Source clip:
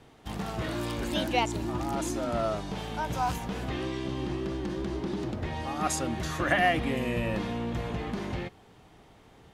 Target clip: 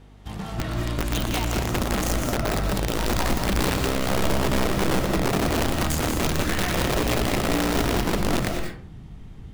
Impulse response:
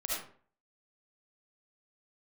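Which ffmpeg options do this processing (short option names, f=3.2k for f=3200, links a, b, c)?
-filter_complex "[0:a]asubboost=boost=9:cutoff=190,alimiter=limit=-16dB:level=0:latency=1:release=171,aeval=exprs='val(0)+0.00398*(sin(2*PI*50*n/s)+sin(2*PI*2*50*n/s)/2+sin(2*PI*3*50*n/s)/3+sin(2*PI*4*50*n/s)/4+sin(2*PI*5*50*n/s)/5)':c=same,aeval=exprs='(mod(8.91*val(0)+1,2)-1)/8.91':c=same,asplit=2[a][b];[1:a]atrim=start_sample=2205,adelay=119[c];[b][c]afir=irnorm=-1:irlink=0,volume=-7dB[d];[a][d]amix=inputs=2:normalize=0"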